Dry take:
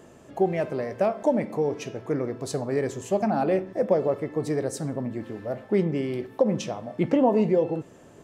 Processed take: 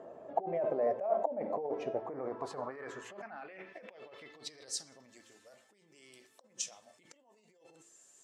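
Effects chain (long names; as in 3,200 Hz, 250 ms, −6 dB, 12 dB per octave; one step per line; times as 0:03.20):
spectral magnitudes quantised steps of 15 dB
low-shelf EQ 62 Hz +6 dB
hum removal 112.1 Hz, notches 4
compressor whose output falls as the input rises −31 dBFS, ratio −1
band-pass filter sweep 660 Hz → 7,600 Hz, 0:01.88–0:05.36
level +2.5 dB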